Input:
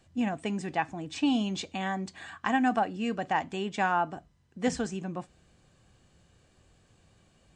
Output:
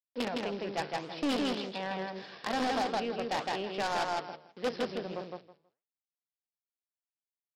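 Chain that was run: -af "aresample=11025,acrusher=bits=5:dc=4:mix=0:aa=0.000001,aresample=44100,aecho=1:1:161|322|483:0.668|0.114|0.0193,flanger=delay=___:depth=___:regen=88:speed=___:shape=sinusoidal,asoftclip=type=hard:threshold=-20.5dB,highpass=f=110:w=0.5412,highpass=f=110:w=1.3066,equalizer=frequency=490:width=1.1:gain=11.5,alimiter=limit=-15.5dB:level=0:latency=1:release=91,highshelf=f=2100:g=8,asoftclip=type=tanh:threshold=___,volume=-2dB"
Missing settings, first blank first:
4.2, 9, 1.7, -23.5dB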